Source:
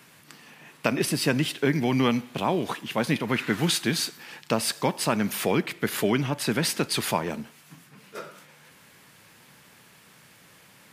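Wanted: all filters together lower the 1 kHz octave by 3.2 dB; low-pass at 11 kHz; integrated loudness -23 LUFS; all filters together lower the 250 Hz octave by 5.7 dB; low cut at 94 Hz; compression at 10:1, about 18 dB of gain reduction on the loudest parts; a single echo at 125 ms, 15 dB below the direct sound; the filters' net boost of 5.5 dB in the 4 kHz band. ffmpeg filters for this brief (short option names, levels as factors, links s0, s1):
-af "highpass=94,lowpass=11000,equalizer=f=250:t=o:g=-7,equalizer=f=1000:t=o:g=-4,equalizer=f=4000:t=o:g=7,acompressor=threshold=0.0178:ratio=10,aecho=1:1:125:0.178,volume=6.31"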